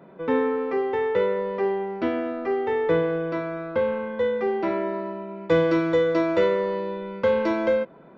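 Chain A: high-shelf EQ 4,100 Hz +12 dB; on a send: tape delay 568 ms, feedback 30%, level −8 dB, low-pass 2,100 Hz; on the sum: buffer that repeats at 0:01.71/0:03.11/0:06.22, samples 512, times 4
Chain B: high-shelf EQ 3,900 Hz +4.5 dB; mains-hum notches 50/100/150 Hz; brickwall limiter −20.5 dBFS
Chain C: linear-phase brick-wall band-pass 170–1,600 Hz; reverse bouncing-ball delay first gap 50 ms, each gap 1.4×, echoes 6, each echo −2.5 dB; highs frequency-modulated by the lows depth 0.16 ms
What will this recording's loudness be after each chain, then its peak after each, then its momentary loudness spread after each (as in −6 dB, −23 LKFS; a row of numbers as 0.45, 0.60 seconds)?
−23.5, −28.5, −22.0 LKFS; −8.5, −20.5, −6.0 dBFS; 6, 4, 7 LU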